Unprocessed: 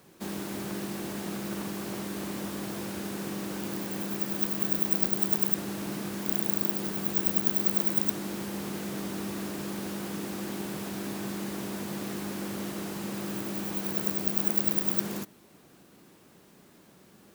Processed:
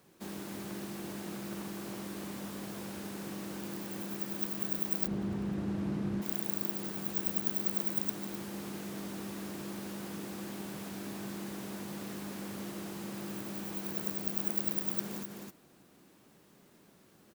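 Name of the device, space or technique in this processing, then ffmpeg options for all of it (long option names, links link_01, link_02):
ducked delay: -filter_complex "[0:a]asplit=3[link_01][link_02][link_03];[link_02]adelay=259,volume=-4.5dB[link_04];[link_03]apad=whole_len=776202[link_05];[link_04][link_05]sidechaincompress=threshold=-39dB:ratio=8:attack=16:release=137[link_06];[link_01][link_06]amix=inputs=2:normalize=0,asplit=3[link_07][link_08][link_09];[link_07]afade=type=out:start_time=5.06:duration=0.02[link_10];[link_08]aemphasis=mode=reproduction:type=riaa,afade=type=in:start_time=5.06:duration=0.02,afade=type=out:start_time=6.21:duration=0.02[link_11];[link_09]afade=type=in:start_time=6.21:duration=0.02[link_12];[link_10][link_11][link_12]amix=inputs=3:normalize=0,volume=-6.5dB"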